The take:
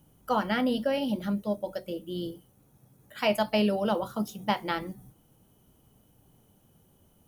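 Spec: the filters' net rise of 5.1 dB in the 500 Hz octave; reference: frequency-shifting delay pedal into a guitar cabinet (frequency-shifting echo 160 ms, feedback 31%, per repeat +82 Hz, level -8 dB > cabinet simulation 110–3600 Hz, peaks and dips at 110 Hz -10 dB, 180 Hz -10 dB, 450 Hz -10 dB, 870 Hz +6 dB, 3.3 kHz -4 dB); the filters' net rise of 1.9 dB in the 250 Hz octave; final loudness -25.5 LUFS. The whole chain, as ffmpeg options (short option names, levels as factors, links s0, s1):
-filter_complex "[0:a]equalizer=f=250:t=o:g=5,equalizer=f=500:t=o:g=8.5,asplit=5[s0][s1][s2][s3][s4];[s1]adelay=160,afreqshift=82,volume=0.398[s5];[s2]adelay=320,afreqshift=164,volume=0.123[s6];[s3]adelay=480,afreqshift=246,volume=0.0385[s7];[s4]adelay=640,afreqshift=328,volume=0.0119[s8];[s0][s5][s6][s7][s8]amix=inputs=5:normalize=0,highpass=110,equalizer=f=110:t=q:w=4:g=-10,equalizer=f=180:t=q:w=4:g=-10,equalizer=f=450:t=q:w=4:g=-10,equalizer=f=870:t=q:w=4:g=6,equalizer=f=3300:t=q:w=4:g=-4,lowpass=f=3600:w=0.5412,lowpass=f=3600:w=1.3066,volume=0.944"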